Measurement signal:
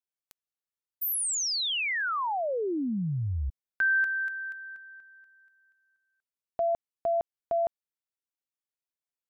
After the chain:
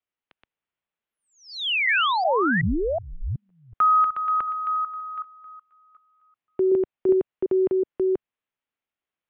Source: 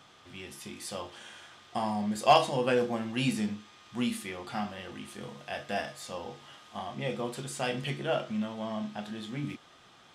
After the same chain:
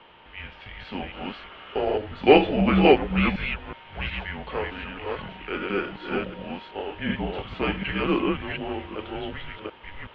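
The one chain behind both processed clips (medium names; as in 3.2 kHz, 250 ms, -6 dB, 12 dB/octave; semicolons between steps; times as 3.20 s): chunks repeated in reverse 373 ms, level -1.5 dB; bass shelf 210 Hz -6.5 dB; mistuned SSB -300 Hz 320–3500 Hz; trim +7 dB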